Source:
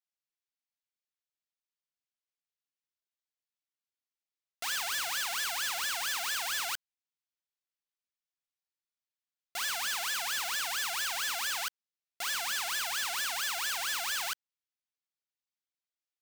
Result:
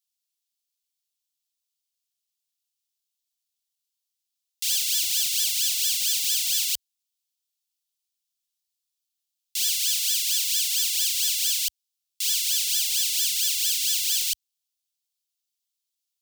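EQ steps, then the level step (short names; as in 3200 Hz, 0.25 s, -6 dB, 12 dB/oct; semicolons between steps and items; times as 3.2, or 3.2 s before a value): inverse Chebyshev band-stop 230–850 Hz, stop band 70 dB; high shelf 2400 Hz +9.5 dB; +3.5 dB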